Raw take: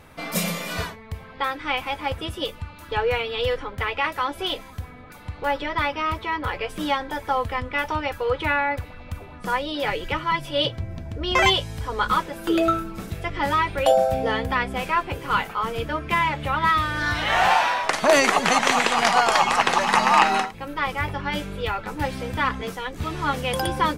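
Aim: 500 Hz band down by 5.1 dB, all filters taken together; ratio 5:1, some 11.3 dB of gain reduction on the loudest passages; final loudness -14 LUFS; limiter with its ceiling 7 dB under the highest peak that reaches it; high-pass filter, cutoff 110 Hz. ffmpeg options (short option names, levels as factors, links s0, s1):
-af "highpass=110,equalizer=f=500:t=o:g=-6.5,acompressor=threshold=0.0398:ratio=5,volume=8.41,alimiter=limit=0.794:level=0:latency=1"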